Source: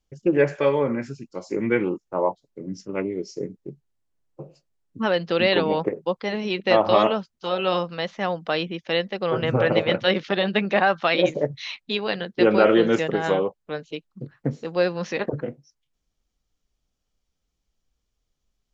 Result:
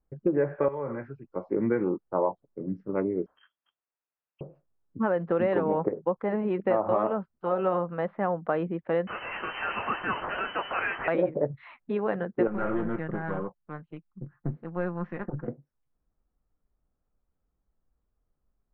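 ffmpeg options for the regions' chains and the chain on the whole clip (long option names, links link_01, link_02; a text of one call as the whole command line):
ffmpeg -i in.wav -filter_complex "[0:a]asettb=1/sr,asplit=3[link_01][link_02][link_03];[link_01]atrim=end=0.684[link_04];[link_02]atrim=start=0.68:end=1.36,asetpts=PTS-STARTPTS,afade=type=in:duration=0.004:curve=qsin,afade=type=out:start_time=0.676:duration=0.004:curve=qsin,equalizer=frequency=210:width_type=o:width=1.4:gain=-12,acrossover=split=170|3000[link_05][link_06][link_07];[link_06]acompressor=threshold=-29dB:ratio=4:attack=3.2:release=140:knee=2.83:detection=peak[link_08];[link_05][link_08][link_07]amix=inputs=3:normalize=0[link_09];[link_03]atrim=start=1.356[link_10];[link_04][link_09]acrossfade=duration=0.004:curve1=hsin:curve2=qsin[link_11];[link_11][link_10]acrossfade=duration=0.004:curve1=qsin:curve2=hsin,asettb=1/sr,asplit=3[link_12][link_13][link_14];[link_12]atrim=end=3.264[link_15];[link_13]atrim=start=3.26:end=4.41,asetpts=PTS-STARTPTS,afade=type=in:duration=0.004:curve=qsin,afade=type=out:start_time=1.146:duration=0.004:curve=qsin,highpass=frequency=890:width_type=q:width=3.6,lowpass=frequency=3100:width_type=q:width=0.5098,lowpass=frequency=3100:width_type=q:width=0.6013,lowpass=frequency=3100:width_type=q:width=0.9,lowpass=frequency=3100:width_type=q:width=2.563,afreqshift=-3600[link_16];[link_14]atrim=start=4.406[link_17];[link_15][link_16]acrossfade=duration=0.004:curve1=hsin:curve2=qsin[link_18];[link_18][link_17]acrossfade=duration=0.004:curve1=qsin:curve2=hsin,asettb=1/sr,asplit=3[link_19][link_20][link_21];[link_19]atrim=end=9.074[link_22];[link_20]atrim=start=9.07:end=11.08,asetpts=PTS-STARTPTS,afade=type=in:duration=0.004:curve=qsin,afade=type=out:start_time=2.006:duration=0.004:curve=qsin,aeval=exprs='val(0)+0.5*0.126*sgn(val(0))':channel_layout=same,flanger=delay=20:depth=5.3:speed=2.5,lowpass=frequency=2700:width_type=q:width=0.5098,lowpass=frequency=2700:width_type=q:width=0.6013,lowpass=frequency=2700:width_type=q:width=0.9,lowpass=frequency=2700:width_type=q:width=2.563,afreqshift=-3200[link_23];[link_21]atrim=start=11.076[link_24];[link_22][link_23]acrossfade=duration=0.004:curve1=hsin:curve2=qsin[link_25];[link_25][link_24]acrossfade=duration=0.004:curve1=qsin:curve2=hsin,asettb=1/sr,asplit=3[link_26][link_27][link_28];[link_26]atrim=end=12.474[link_29];[link_27]atrim=start=12.47:end=15.48,asetpts=PTS-STARTPTS,afade=type=in:duration=0.004:curve=qsin,afade=type=out:start_time=3.006:duration=0.004:curve=qsin,equalizer=frequency=490:width=1.1:gain=-10.5,aeval=exprs='(tanh(15.8*val(0)+0.65)-tanh(0.65))/15.8':channel_layout=same,aecho=1:1:5.7:0.37,atrim=end_sample=132741[link_30];[link_28]atrim=start=15.476[link_31];[link_29][link_30]acrossfade=duration=0.004:curve1=hsin:curve2=qsin[link_32];[link_32][link_31]acrossfade=duration=0.004:curve1=qsin:curve2=hsin,lowpass=frequency=1500:width=0.5412,lowpass=frequency=1500:width=1.3066,acompressor=threshold=-21dB:ratio=6" out.wav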